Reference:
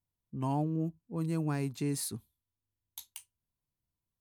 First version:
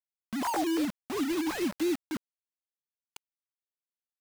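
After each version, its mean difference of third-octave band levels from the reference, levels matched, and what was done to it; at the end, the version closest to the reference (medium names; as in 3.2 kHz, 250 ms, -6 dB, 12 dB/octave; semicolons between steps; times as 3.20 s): 14.5 dB: formants replaced by sine waves; in parallel at +1 dB: compression 8:1, threshold -41 dBFS, peak gain reduction 13.5 dB; on the sum: bit crusher 6-bit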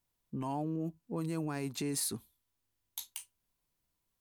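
3.5 dB: in parallel at -1 dB: compression, threshold -40 dBFS, peak gain reduction 12.5 dB; on the sum: peak limiter -27 dBFS, peak gain reduction 7.5 dB; peaking EQ 93 Hz -10 dB 2.2 oct; trim +3 dB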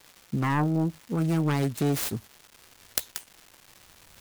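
7.0 dB: self-modulated delay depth 0.57 ms; recorder AGC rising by 21 dB/s; crackle 570 per s -47 dBFS; trim +8 dB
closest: second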